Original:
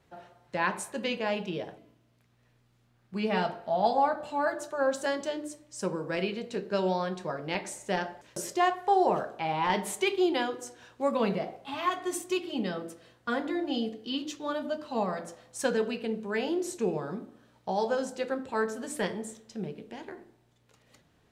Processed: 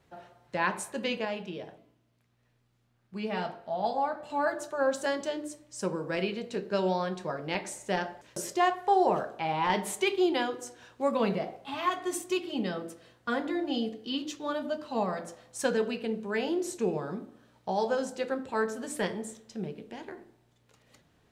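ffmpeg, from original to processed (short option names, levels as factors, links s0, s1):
-filter_complex "[0:a]asettb=1/sr,asplit=3[s0][s1][s2];[s0]atrim=end=1.254[s3];[s1]atrim=start=1.25:end=4.3,asetpts=PTS-STARTPTS,afade=t=in:d=0.004:c=qsin,afade=t=out:st=3.046:d=0.004:c=qsin,flanger=delay=5.8:depth=4.3:regen=-89:speed=1.3:shape=sinusoidal[s4];[s2]atrim=start=4.296[s5];[s3][s4]acrossfade=d=0.004:c1=hsin:c2=qsin[s6];[s6][s5]acrossfade=d=0.004:c1=qsin:c2=hsin"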